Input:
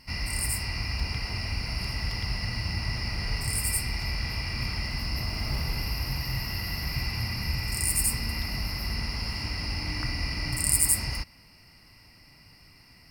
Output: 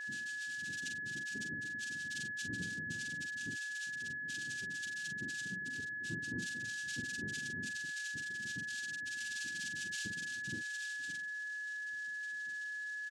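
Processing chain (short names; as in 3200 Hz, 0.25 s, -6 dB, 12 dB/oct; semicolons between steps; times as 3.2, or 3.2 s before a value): elliptic band-stop 1100–2800 Hz, stop band 40 dB; tilt +2 dB/oct; compressor 2:1, threshold -40 dBFS, peak gain reduction 15.5 dB; soft clip -30 dBFS, distortion -12 dB; loudest bins only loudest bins 1; noise vocoder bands 4; whine 1700 Hz -50 dBFS; doubler 44 ms -6 dB; gain +9 dB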